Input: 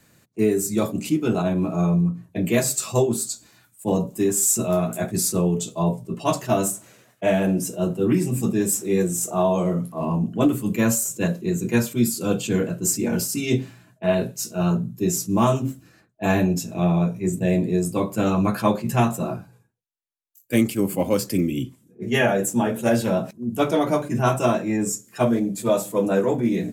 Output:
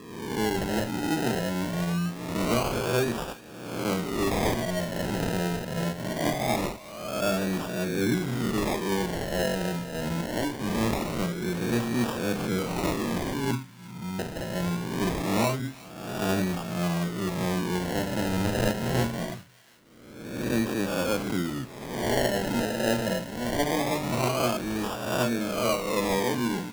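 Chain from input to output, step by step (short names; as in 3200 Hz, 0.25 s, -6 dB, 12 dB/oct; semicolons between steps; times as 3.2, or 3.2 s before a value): spectral swells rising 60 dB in 1.22 s; 10.21–10.61 low shelf 310 Hz -9.5 dB; 13.51–14.19 inverse Chebyshev band-stop 1300–5100 Hz, stop band 80 dB; decimation with a swept rate 30×, swing 60% 0.23 Hz; thin delay 0.36 s, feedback 47%, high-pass 1500 Hz, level -18 dB; gain -8.5 dB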